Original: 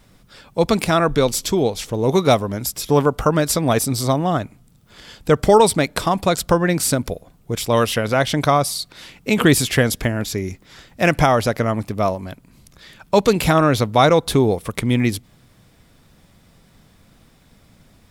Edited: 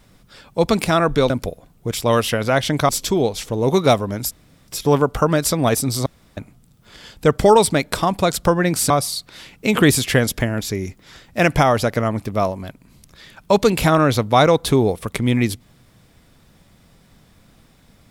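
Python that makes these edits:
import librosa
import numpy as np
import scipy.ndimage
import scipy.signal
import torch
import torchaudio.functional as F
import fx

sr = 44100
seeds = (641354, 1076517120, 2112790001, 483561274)

y = fx.edit(x, sr, fx.insert_room_tone(at_s=2.72, length_s=0.37),
    fx.room_tone_fill(start_s=4.1, length_s=0.31),
    fx.move(start_s=6.94, length_s=1.59, to_s=1.3), tone=tone)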